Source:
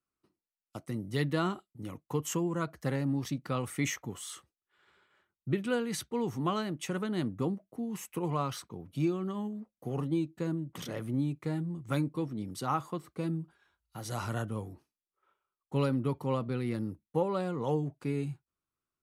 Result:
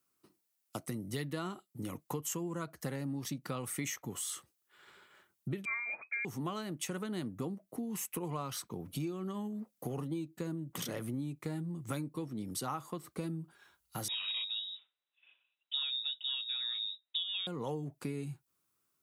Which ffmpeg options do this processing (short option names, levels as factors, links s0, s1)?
-filter_complex "[0:a]asettb=1/sr,asplit=3[s0][s1][s2];[s0]atrim=end=5.654[s3];[s1]atrim=start=5.65:end=6.25,asetpts=PTS-STARTPTS,afade=t=in:d=0.004:c=qsin,afade=t=out:st=0.596:d=0.004:c=qsin,lowpass=f=2200:t=q:w=0.5098,lowpass=f=2200:t=q:w=0.6013,lowpass=f=2200:t=q:w=0.9,lowpass=f=2200:t=q:w=2.563,afreqshift=-2600[s4];[s2]atrim=start=6.246[s5];[s3][s4]acrossfade=d=0.004:c1=hsin:c2=qsin[s6];[s6][s5]acrossfade=d=0.004:c1=qsin:c2=hsin,asettb=1/sr,asplit=3[s7][s8][s9];[s7]atrim=end=14.084[s10];[s8]atrim=start=14.08:end=17.47,asetpts=PTS-STARTPTS,afade=t=in:d=0.004:c=qsin,afade=t=out:st=3.386:d=0.004:c=qsin,lowpass=f=3300:t=q:w=0.5098,lowpass=f=3300:t=q:w=0.6013,lowpass=f=3300:t=q:w=0.9,lowpass=f=3300:t=q:w=2.563,afreqshift=-3900[s11];[s9]atrim=start=17.466[s12];[s10][s11]acrossfade=d=0.004:c1=hsin:c2=qsin[s13];[s13][s12]acrossfade=d=0.004:c1=qsin:c2=hsin,highpass=100,highshelf=f=6600:g=11,acompressor=threshold=0.00631:ratio=4,volume=2.11"